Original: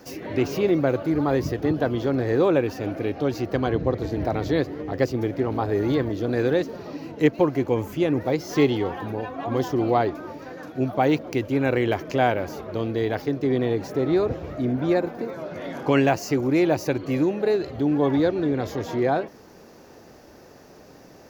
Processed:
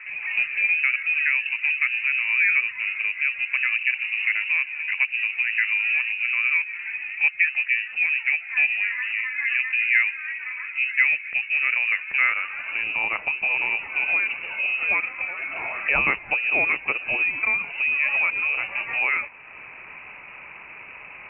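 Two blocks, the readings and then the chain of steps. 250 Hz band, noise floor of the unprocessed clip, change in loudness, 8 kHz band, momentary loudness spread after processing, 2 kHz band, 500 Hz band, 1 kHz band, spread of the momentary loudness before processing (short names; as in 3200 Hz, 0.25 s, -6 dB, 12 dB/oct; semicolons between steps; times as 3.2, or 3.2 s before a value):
under -25 dB, -48 dBFS, +2.5 dB, under -35 dB, 10 LU, +15.5 dB, -20.5 dB, -7.5 dB, 9 LU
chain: HPF 90 Hz; compressor 1.5:1, threshold -43 dBFS, peak gain reduction 11 dB; low-pass sweep 990 Hz -> 2200 Hz, 12.03–12.87; inverted band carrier 2800 Hz; gain +6.5 dB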